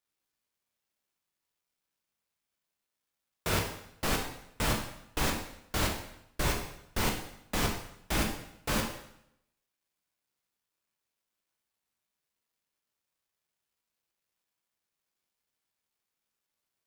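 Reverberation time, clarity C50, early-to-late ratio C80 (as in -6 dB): 0.75 s, 6.0 dB, 8.5 dB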